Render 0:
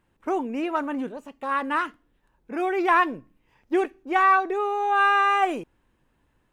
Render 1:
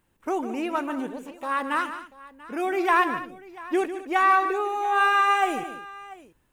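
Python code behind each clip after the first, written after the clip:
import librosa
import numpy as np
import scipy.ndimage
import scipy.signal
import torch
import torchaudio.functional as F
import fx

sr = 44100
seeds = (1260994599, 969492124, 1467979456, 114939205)

y = fx.high_shelf(x, sr, hz=6100.0, db=12.0)
y = fx.echo_multitap(y, sr, ms=(148, 214, 689), db=(-11.0, -16.0, -19.5))
y = y * librosa.db_to_amplitude(-1.5)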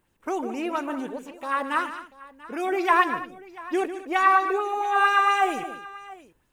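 y = fx.bell_lfo(x, sr, hz=4.4, low_hz=420.0, high_hz=6500.0, db=7)
y = y * librosa.db_to_amplitude(-1.5)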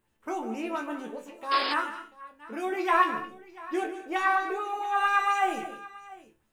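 y = fx.resonator_bank(x, sr, root=38, chord='fifth', decay_s=0.23)
y = fx.spec_paint(y, sr, seeds[0], shape='noise', start_s=1.51, length_s=0.23, low_hz=270.0, high_hz=5200.0, level_db=-36.0)
y = y * librosa.db_to_amplitude(5.0)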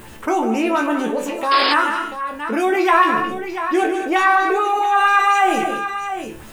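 y = fx.env_flatten(x, sr, amount_pct=50)
y = y * librosa.db_to_amplitude(7.0)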